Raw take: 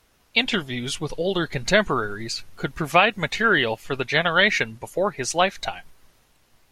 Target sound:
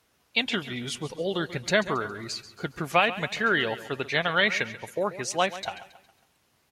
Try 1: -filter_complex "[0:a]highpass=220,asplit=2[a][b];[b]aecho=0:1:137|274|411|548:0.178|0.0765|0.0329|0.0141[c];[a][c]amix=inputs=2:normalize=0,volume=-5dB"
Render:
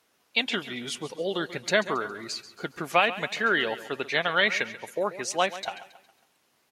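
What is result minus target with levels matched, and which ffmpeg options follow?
125 Hz band -6.5 dB
-filter_complex "[0:a]highpass=87,asplit=2[a][b];[b]aecho=0:1:137|274|411|548:0.178|0.0765|0.0329|0.0141[c];[a][c]amix=inputs=2:normalize=0,volume=-5dB"

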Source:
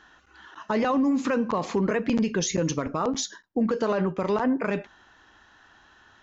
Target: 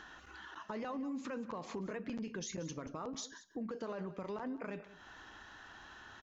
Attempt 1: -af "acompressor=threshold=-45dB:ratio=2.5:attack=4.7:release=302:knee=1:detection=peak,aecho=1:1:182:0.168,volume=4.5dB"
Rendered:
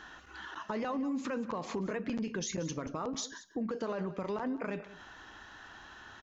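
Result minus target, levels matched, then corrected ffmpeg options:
compressor: peak gain reduction -6 dB
-af "acompressor=threshold=-55dB:ratio=2.5:attack=4.7:release=302:knee=1:detection=peak,aecho=1:1:182:0.168,volume=4.5dB"

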